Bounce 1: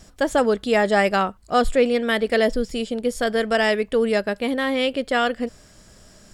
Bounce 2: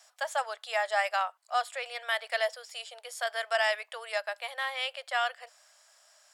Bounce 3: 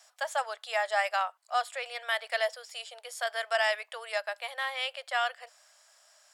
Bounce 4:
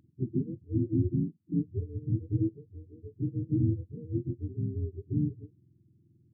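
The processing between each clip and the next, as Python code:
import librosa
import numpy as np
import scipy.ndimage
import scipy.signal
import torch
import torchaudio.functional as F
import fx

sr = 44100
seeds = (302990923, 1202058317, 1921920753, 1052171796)

y1 = scipy.signal.sosfilt(scipy.signal.butter(8, 640.0, 'highpass', fs=sr, output='sos'), x)
y1 = fx.rider(y1, sr, range_db=3, speed_s=2.0)
y1 = y1 * 10.0 ** (-7.0 / 20.0)
y2 = y1
y3 = fx.octave_mirror(y2, sr, pivot_hz=460.0)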